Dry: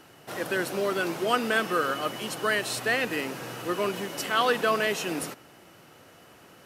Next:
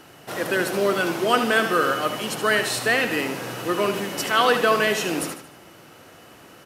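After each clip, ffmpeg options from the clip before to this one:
-af "aecho=1:1:75|150|225|300:0.355|0.142|0.0568|0.0227,volume=5dB"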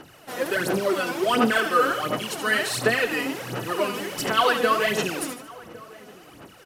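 -filter_complex "[0:a]aphaser=in_gain=1:out_gain=1:delay=4.1:decay=0.68:speed=1.4:type=sinusoidal,asplit=2[a][b];[b]adelay=1108,volume=-21dB,highshelf=f=4k:g=-24.9[c];[a][c]amix=inputs=2:normalize=0,volume=-4.5dB"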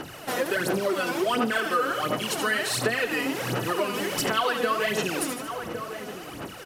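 -af "acompressor=threshold=-35dB:ratio=3,volume=8.5dB"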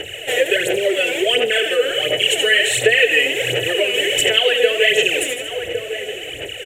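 -af "firequalizer=gain_entry='entry(100,0);entry(200,-21);entry(440,7);entry(620,1);entry(1100,-24);entry(1800,6);entry(3000,12);entry(4800,-18);entry(7300,8);entry(10000,-4)':delay=0.05:min_phase=1,volume=6.5dB"

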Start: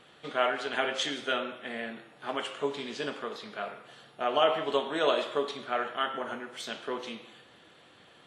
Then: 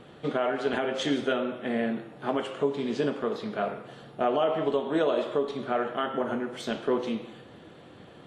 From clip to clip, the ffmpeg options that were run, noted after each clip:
-af "tiltshelf=f=800:g=8,alimiter=limit=-22dB:level=0:latency=1:release=338,volume=6.5dB"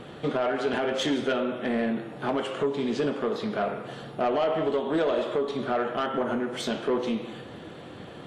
-filter_complex "[0:a]asplit=2[a][b];[b]acompressor=threshold=-35dB:ratio=6,volume=2dB[c];[a][c]amix=inputs=2:normalize=0,asoftclip=type=tanh:threshold=-18dB"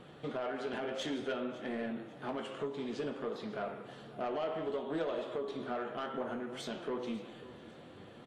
-af "aecho=1:1:547|1094|1641:0.119|0.0452|0.0172,flanger=delay=5.3:depth=9.4:regen=71:speed=0.59:shape=triangular,volume=-6.5dB"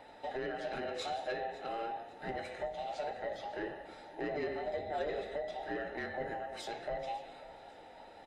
-af "afftfilt=real='real(if(between(b,1,1008),(2*floor((b-1)/48)+1)*48-b,b),0)':imag='imag(if(between(b,1,1008),(2*floor((b-1)/48)+1)*48-b,b),0)*if(between(b,1,1008),-1,1)':win_size=2048:overlap=0.75,volume=-1dB"

